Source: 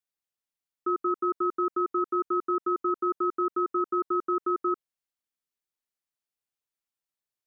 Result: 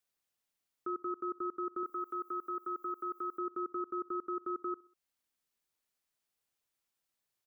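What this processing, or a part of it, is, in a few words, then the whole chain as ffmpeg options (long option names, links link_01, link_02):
stacked limiters: -filter_complex "[0:a]alimiter=level_in=2dB:limit=-24dB:level=0:latency=1:release=454,volume=-2dB,alimiter=level_in=8dB:limit=-24dB:level=0:latency=1:release=136,volume=-8dB,alimiter=level_in=10.5dB:limit=-24dB:level=0:latency=1,volume=-10.5dB,asettb=1/sr,asplit=3[link_01][link_02][link_03];[link_01]atrim=end=1.834[link_04];[link_02]atrim=start=1.83:end=3.38,asetpts=PTS-STARTPTS,afade=type=in:duration=0.004:curve=qsin,afade=type=out:start_time=1.546:duration=0.004:curve=qsin,aemphasis=mode=production:type=riaa[link_05];[link_03]atrim=start=3.376[link_06];[link_04][link_05]acrossfade=duration=0.004:curve1=hsin:curve2=qsin[link_07];[link_07][link_06]acrossfade=duration=0.004:curve1=qsin:curve2=hsin,aecho=1:1:65|130|195:0.0668|0.0341|0.0174,volume=5dB"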